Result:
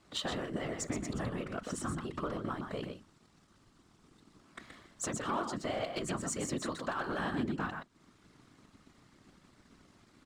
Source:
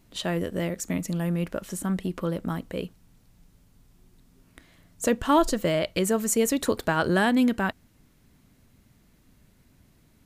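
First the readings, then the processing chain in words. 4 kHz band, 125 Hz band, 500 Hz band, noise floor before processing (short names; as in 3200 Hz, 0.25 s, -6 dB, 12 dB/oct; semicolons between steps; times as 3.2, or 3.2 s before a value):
-7.5 dB, -10.5 dB, -12.0 dB, -61 dBFS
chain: speaker cabinet 110–7900 Hz, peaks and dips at 150 Hz -10 dB, 250 Hz +3 dB, 430 Hz -9 dB, 1200 Hz +8 dB, 2500 Hz -3 dB, 6400 Hz -3 dB; compressor 4:1, threshold -39 dBFS, peak gain reduction 20.5 dB; notches 60/120/180/240 Hz; echo 0.125 s -6.5 dB; sample leveller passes 1; whisperiser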